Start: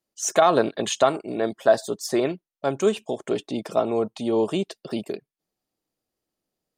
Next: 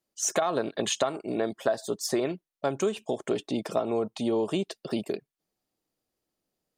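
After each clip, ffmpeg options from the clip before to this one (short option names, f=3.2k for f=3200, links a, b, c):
-af "acompressor=threshold=-23dB:ratio=6"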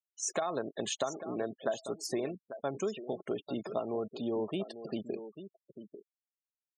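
-af "aecho=1:1:845:0.266,afftfilt=real='re*gte(hypot(re,im),0.0178)':imag='im*gte(hypot(re,im),0.0178)':win_size=1024:overlap=0.75,volume=-7dB"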